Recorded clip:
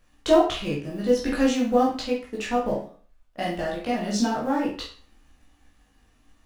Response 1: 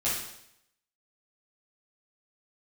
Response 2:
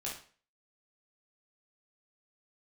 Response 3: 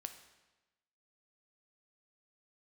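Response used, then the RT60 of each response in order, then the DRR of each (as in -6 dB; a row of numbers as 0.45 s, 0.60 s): 2; 0.75 s, 0.40 s, 1.1 s; -10.0 dB, -5.0 dB, 7.5 dB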